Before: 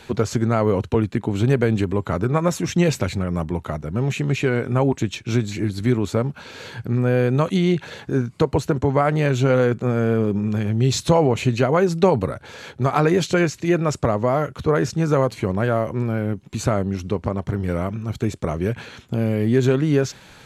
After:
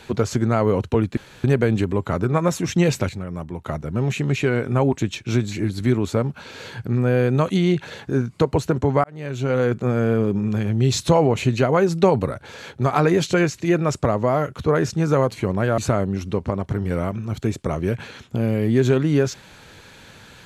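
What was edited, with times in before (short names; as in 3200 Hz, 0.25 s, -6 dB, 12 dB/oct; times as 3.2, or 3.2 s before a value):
1.17–1.44 room tone
3.09–3.66 gain -6.5 dB
9.04–9.78 fade in
15.78–16.56 cut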